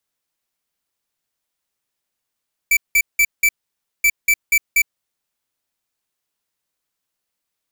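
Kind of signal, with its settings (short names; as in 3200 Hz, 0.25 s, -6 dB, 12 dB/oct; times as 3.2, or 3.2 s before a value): beep pattern square 2320 Hz, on 0.06 s, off 0.18 s, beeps 4, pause 0.55 s, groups 2, -13.5 dBFS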